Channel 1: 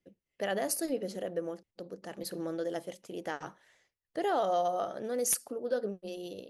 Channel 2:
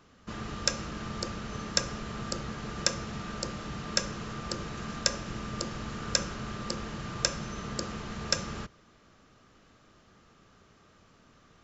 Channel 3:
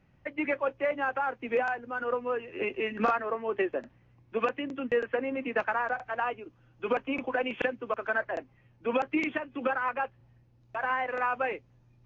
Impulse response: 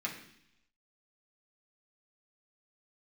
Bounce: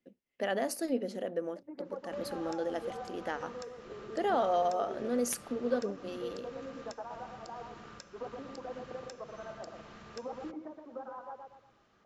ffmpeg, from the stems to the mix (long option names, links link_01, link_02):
-filter_complex "[0:a]equalizer=frequency=240:width=6.8:gain=13,volume=1.5dB[link_01];[1:a]acompressor=threshold=-38dB:ratio=6,adelay=1850,volume=-5.5dB[link_02];[2:a]lowpass=frequency=1000:width=0.5412,lowpass=frequency=1000:width=1.3066,adelay=1300,volume=-11.5dB,asplit=2[link_03][link_04];[link_04]volume=-4.5dB,aecho=0:1:119|238|357|476|595:1|0.38|0.144|0.0549|0.0209[link_05];[link_01][link_02][link_03][link_05]amix=inputs=4:normalize=0,lowpass=frequency=3300:poles=1,lowshelf=frequency=200:gain=-10.5"